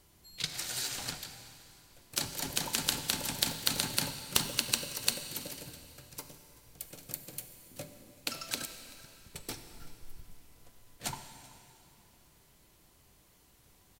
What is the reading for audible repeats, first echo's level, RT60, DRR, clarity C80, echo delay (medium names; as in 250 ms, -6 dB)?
1, -21.5 dB, 2.8 s, 7.5 dB, 9.0 dB, 384 ms